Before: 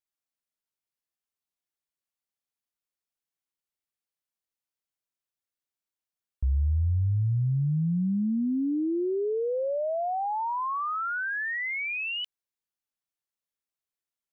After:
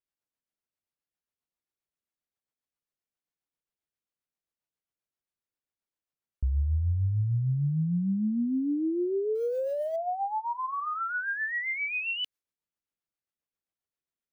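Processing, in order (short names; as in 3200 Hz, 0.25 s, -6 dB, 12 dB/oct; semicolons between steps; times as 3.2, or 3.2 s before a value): 9.35–9.96 level-crossing sampler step -50 dBFS; in parallel at +1.5 dB: limiter -30 dBFS, peak gain reduction 9.5 dB; on the sum: rotary speaker horn 7.5 Hz; mismatched tape noise reduction decoder only; gain -3.5 dB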